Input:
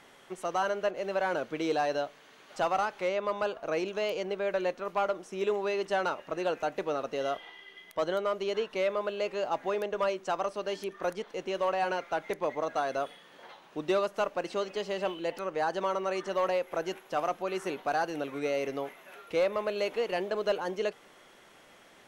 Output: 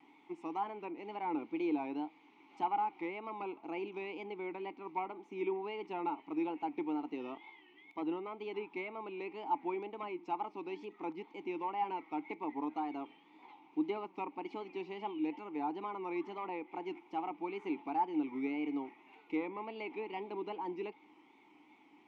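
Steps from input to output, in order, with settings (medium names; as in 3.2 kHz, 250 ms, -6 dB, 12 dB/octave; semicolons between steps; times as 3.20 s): wow and flutter 140 cents; low-pass that closes with the level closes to 2.7 kHz, closed at -25 dBFS; vowel filter u; trim +7 dB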